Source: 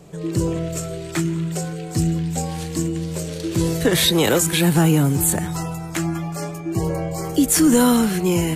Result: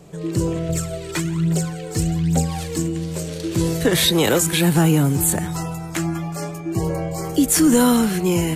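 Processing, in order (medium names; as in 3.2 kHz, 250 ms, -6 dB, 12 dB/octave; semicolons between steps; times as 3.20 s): 0.69–2.78 s: phaser 1.2 Hz, delay 2.4 ms, feedback 60%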